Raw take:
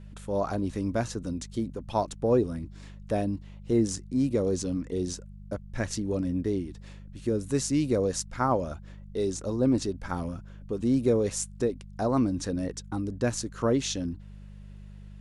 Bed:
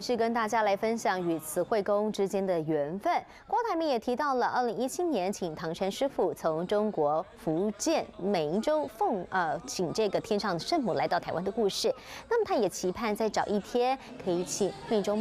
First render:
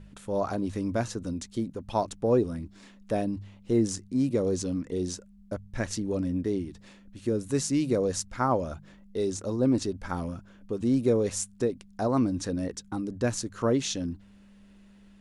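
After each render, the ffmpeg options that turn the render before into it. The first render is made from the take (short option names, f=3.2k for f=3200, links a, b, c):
-af "bandreject=f=50:t=h:w=4,bandreject=f=100:t=h:w=4,bandreject=f=150:t=h:w=4"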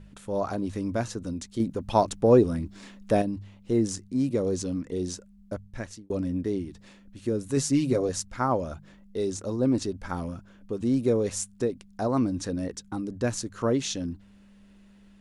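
-filter_complex "[0:a]asettb=1/sr,asplit=3[a][b][c];[a]atrim=end=7.564[d];[b]atrim=start=7.56:end=8.09,asetpts=PTS-STARTPTS,afade=t=in:d=0.004:c=qsin,afade=t=out:st=0.526:d=0.004:c=qsin,aecho=1:1:7.5:0.65,atrim=end_sample=23373[e];[c]atrim=start=8.086[f];[d][e]acrossfade=d=0.004:c1=hsin:c2=qsin[g];[g][f]acrossfade=d=0.004:c1=qsin:c2=hsin,asplit=4[h][i][j][k];[h]atrim=end=1.602[l];[i]atrim=start=1.598:end=3.222,asetpts=PTS-STARTPTS,volume=5.5dB[m];[j]atrim=start=3.218:end=6.1,asetpts=PTS-STARTPTS,afade=t=out:st=2.362:d=0.52[n];[k]atrim=start=6.1,asetpts=PTS-STARTPTS,afade=t=in:d=0.004:c=hsin[o];[l][m]acrossfade=d=0.004:c1=hsin:c2=hsin[p];[n][o]concat=n=2:v=0:a=1[q];[p][q]acrossfade=d=0.004:c1=hsin:c2=hsin"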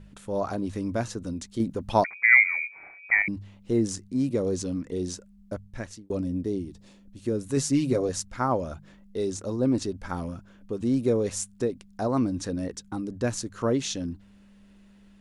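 -filter_complex "[0:a]asettb=1/sr,asplit=3[a][b][c];[a]atrim=end=2.044[d];[b]atrim=start=2.04:end=3.28,asetpts=PTS-STARTPTS,afade=t=in:d=0.004:c=qsin,afade=t=out:st=1.236:d=0.004:c=qsin,lowpass=f=2.1k:t=q:w=0.5098,lowpass=f=2.1k:t=q:w=0.6013,lowpass=f=2.1k:t=q:w=0.9,lowpass=f=2.1k:t=q:w=2.563,afreqshift=-2500[e];[c]atrim=start=3.276[f];[d][e]acrossfade=d=0.004:c1=hsin:c2=qsin[g];[g][f]acrossfade=d=0.004:c1=qsin:c2=hsin,asettb=1/sr,asplit=3[h][i][j];[h]atrim=end=6.214[k];[i]atrim=start=6.21:end=7.25,asetpts=PTS-STARTPTS,afade=t=in:d=0.004:c=qsin,afade=t=out:st=1.036:d=0.004:c=qsin,equalizer=f=1.7k:w=0.92:g=-8.5[l];[j]atrim=start=7.246[m];[k][l]acrossfade=d=0.004:c1=hsin:c2=qsin[n];[n][m]acrossfade=d=0.004:c1=qsin:c2=hsin"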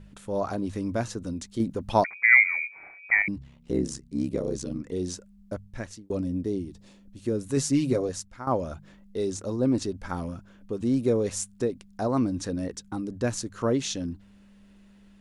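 -filter_complex "[0:a]asettb=1/sr,asplit=3[a][b][c];[a]atrim=end=3.374[d];[b]atrim=start=3.37:end=4.84,asetpts=PTS-STARTPTS,afade=t=in:d=0.004:c=qsin,afade=t=out:st=1.466:d=0.004:c=qsin,aeval=exprs='val(0)*sin(2*PI*34*n/s)':c=same[e];[c]atrim=start=4.836[f];[d][e]acrossfade=d=0.004:c1=hsin:c2=qsin[g];[g][f]acrossfade=d=0.004:c1=qsin:c2=hsin,asplit=2[h][i];[h]atrim=end=8.47,asetpts=PTS-STARTPTS,afade=t=out:st=7.92:d=0.55:silence=0.199526[j];[i]atrim=start=8.47,asetpts=PTS-STARTPTS,afade=t=in:d=0.004:c=hsin:silence=0.199526[k];[j][k]concat=n=2:v=0:a=1"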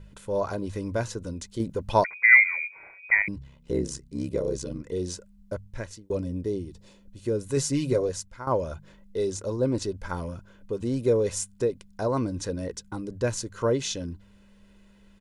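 -af "aecho=1:1:2:0.45"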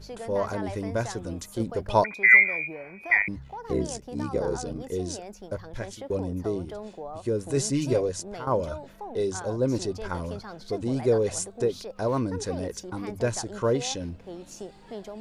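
-filter_complex "[1:a]volume=-11dB[a];[0:a][a]amix=inputs=2:normalize=0"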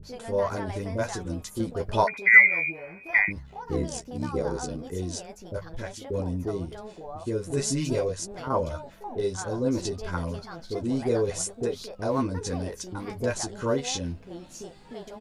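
-filter_complex "[0:a]asplit=2[a][b];[b]adelay=12,volume=-7dB[c];[a][c]amix=inputs=2:normalize=0,acrossover=split=460[d][e];[e]adelay=30[f];[d][f]amix=inputs=2:normalize=0"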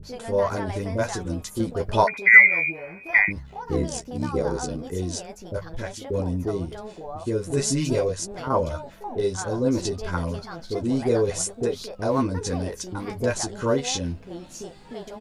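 -af "volume=3.5dB,alimiter=limit=-1dB:level=0:latency=1"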